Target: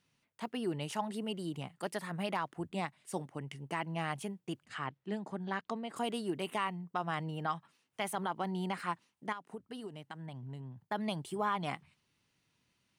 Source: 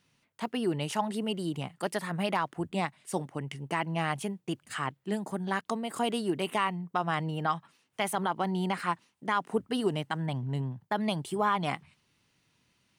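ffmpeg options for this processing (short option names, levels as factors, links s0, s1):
-filter_complex "[0:a]asplit=3[s0][s1][s2];[s0]afade=t=out:st=4.65:d=0.02[s3];[s1]lowpass=4900,afade=t=in:st=4.65:d=0.02,afade=t=out:st=5.95:d=0.02[s4];[s2]afade=t=in:st=5.95:d=0.02[s5];[s3][s4][s5]amix=inputs=3:normalize=0,asettb=1/sr,asplit=3[s6][s7][s8];[s6]atrim=end=9.324[s9];[s7]atrim=start=9.32:end=10.77,asetpts=PTS-STARTPTS,afade=t=in:d=0.004:c=qsin,afade=t=out:st=1.446:d=0.004:c=qsin,acompressor=threshold=0.0158:ratio=6[s10];[s8]atrim=start=10.766[s11];[s9][s10]acrossfade=d=0.004:c1=hsin:c2=qsin[s12];[s12][s11]acrossfade=d=0.004:c1=qsin:c2=hsin,volume=0.501"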